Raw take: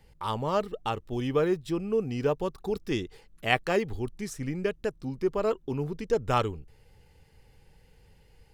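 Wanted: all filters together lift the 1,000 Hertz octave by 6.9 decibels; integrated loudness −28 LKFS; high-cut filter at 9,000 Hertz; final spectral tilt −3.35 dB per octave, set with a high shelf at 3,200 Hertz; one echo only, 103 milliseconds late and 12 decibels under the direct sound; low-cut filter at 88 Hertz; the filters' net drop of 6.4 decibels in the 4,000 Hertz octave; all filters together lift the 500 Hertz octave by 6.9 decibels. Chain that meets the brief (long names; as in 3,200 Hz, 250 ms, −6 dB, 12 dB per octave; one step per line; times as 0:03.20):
high-pass filter 88 Hz
low-pass filter 9,000 Hz
parametric band 500 Hz +7 dB
parametric band 1,000 Hz +7.5 dB
high-shelf EQ 3,200 Hz −5.5 dB
parametric band 4,000 Hz −6.5 dB
single-tap delay 103 ms −12 dB
level −3.5 dB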